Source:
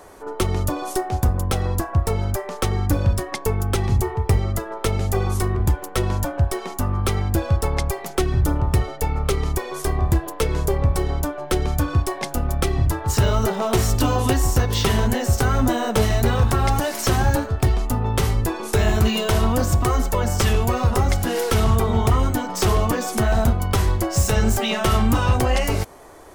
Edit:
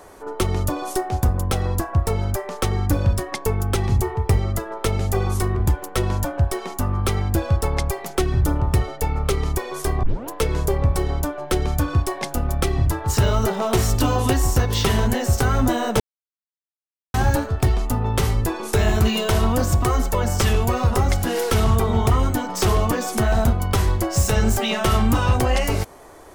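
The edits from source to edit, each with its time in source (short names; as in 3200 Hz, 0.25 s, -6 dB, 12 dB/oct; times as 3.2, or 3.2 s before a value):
10.03 tape start 0.26 s
16–17.14 mute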